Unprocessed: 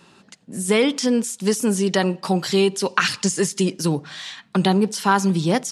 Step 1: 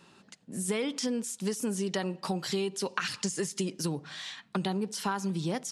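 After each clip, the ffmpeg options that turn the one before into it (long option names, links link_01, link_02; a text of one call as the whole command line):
ffmpeg -i in.wav -af "acompressor=threshold=-22dB:ratio=4,volume=-6.5dB" out.wav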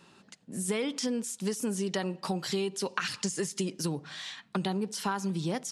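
ffmpeg -i in.wav -af anull out.wav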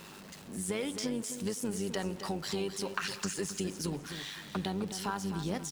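ffmpeg -i in.wav -filter_complex "[0:a]aeval=exprs='val(0)+0.5*0.00944*sgn(val(0))':channel_layout=same,tremolo=f=100:d=0.519,asplit=2[link_01][link_02];[link_02]aecho=0:1:259|518|777:0.316|0.0885|0.0248[link_03];[link_01][link_03]amix=inputs=2:normalize=0,volume=-2.5dB" out.wav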